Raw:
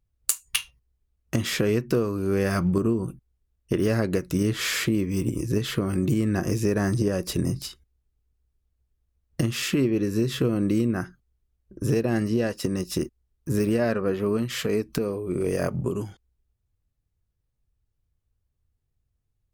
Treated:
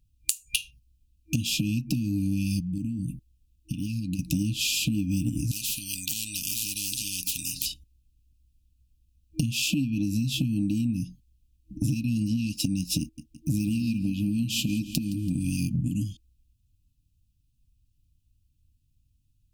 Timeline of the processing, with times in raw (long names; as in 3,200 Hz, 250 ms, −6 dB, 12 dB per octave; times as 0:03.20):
0:02.60–0:04.19: downward compressor 5 to 1, threshold −33 dBFS
0:05.51–0:07.66: every bin compressed towards the loudest bin 10 to 1
0:13.01–0:15.44: repeating echo 167 ms, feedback 53%, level −16.5 dB
whole clip: brick-wall band-stop 320–2,400 Hz; downward compressor, threshold −31 dBFS; level +7.5 dB